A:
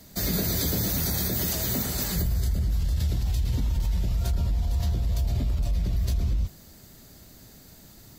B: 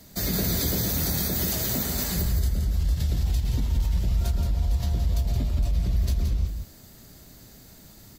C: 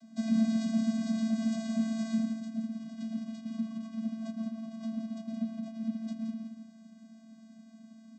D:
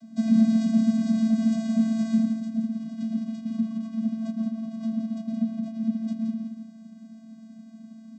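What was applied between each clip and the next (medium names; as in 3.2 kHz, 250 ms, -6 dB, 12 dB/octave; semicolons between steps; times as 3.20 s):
delay 172 ms -7 dB
vocoder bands 16, square 223 Hz
bass shelf 390 Hz +8.5 dB; trim +1.5 dB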